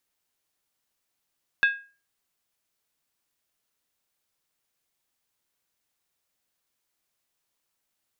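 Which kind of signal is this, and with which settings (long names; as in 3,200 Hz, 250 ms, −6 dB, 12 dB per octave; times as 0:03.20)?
struck skin, lowest mode 1,630 Hz, decay 0.35 s, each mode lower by 8.5 dB, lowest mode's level −14 dB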